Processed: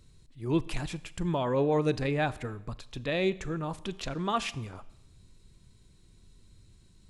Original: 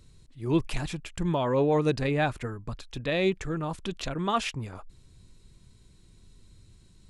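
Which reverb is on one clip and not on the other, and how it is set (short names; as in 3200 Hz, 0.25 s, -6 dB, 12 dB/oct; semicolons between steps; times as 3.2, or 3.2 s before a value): Schroeder reverb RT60 0.89 s, combs from 29 ms, DRR 17.5 dB; gain -2.5 dB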